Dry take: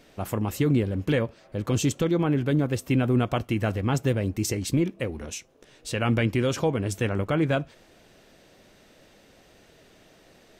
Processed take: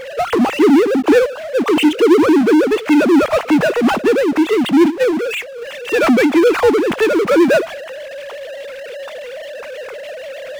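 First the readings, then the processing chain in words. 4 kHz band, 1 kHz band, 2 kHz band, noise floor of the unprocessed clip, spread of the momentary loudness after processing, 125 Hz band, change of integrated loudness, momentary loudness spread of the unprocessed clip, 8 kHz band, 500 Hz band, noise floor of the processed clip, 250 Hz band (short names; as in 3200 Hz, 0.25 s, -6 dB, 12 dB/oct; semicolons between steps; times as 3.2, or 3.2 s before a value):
+11.5 dB, +14.0 dB, +14.0 dB, -57 dBFS, 18 LU, -10.0 dB, +12.5 dB, 9 LU, +2.5 dB, +15.5 dB, -30 dBFS, +13.5 dB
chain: sine-wave speech; power-law curve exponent 0.5; gain +6.5 dB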